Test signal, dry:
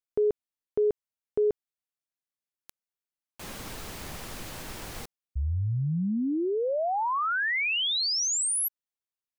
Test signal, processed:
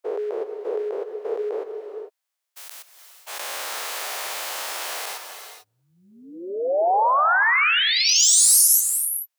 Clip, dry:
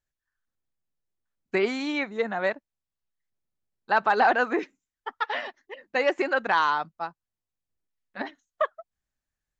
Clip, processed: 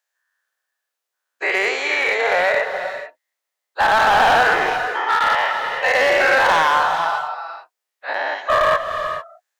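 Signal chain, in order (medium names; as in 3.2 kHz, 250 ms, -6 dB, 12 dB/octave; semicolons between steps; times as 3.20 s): every event in the spectrogram widened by 240 ms; high-pass 550 Hz 24 dB/octave; dynamic bell 4 kHz, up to -5 dB, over -39 dBFS, Q 1.4; in parallel at -0.5 dB: peak limiter -12 dBFS; on the sum: overload inside the chain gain 11.5 dB; gated-style reverb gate 470 ms rising, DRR 7 dB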